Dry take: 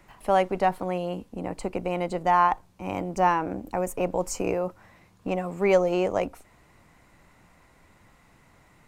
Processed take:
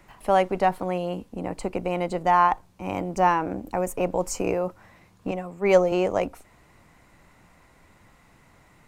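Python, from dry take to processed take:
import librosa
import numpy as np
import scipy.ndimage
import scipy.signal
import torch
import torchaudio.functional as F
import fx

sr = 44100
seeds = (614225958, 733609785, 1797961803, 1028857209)

y = fx.band_widen(x, sr, depth_pct=70, at=(5.31, 5.92))
y = y * 10.0 ** (1.5 / 20.0)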